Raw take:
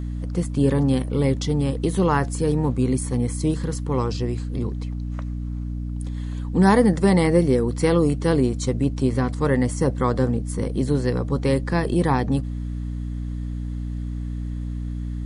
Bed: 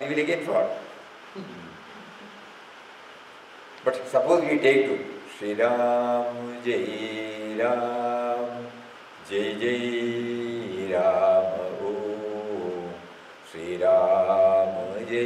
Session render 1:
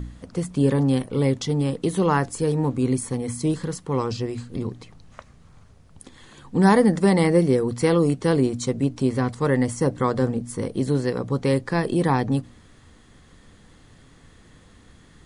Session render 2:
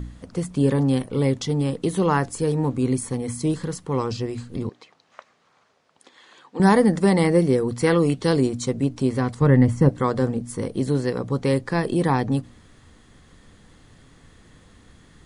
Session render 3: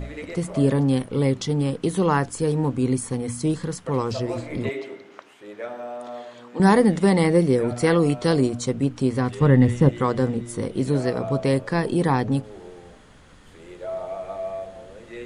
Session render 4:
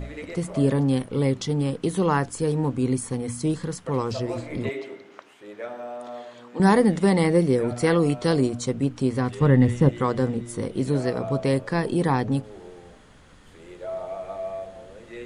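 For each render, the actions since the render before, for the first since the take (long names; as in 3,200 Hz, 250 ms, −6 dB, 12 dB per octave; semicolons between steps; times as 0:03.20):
hum removal 60 Hz, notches 5
0:04.69–0:06.60: band-pass filter 510–5,500 Hz; 0:07.86–0:08.47: parametric band 1,500 Hz → 7,200 Hz +8 dB; 0:09.41–0:09.89: bass and treble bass +10 dB, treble −11 dB
mix in bed −11.5 dB
level −1.5 dB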